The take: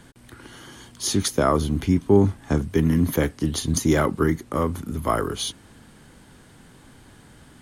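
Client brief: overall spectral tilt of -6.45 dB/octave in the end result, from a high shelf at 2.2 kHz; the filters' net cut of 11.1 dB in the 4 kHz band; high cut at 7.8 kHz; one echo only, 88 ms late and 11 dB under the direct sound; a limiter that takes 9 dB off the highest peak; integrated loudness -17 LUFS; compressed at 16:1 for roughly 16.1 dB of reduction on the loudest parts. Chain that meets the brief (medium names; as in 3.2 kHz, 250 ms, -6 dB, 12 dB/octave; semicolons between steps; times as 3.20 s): low-pass 7.8 kHz; treble shelf 2.2 kHz -8.5 dB; peaking EQ 4 kHz -5.5 dB; compression 16:1, threshold -26 dBFS; peak limiter -23 dBFS; delay 88 ms -11 dB; trim +18 dB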